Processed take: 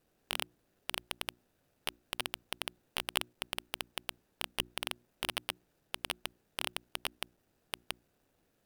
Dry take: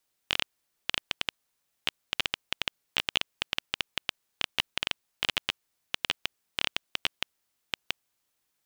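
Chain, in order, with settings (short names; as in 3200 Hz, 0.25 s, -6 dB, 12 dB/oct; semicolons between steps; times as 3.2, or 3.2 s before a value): median filter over 41 samples; bell 15000 Hz +6 dB; notches 60/120/180/240/300/360 Hz; gain +17 dB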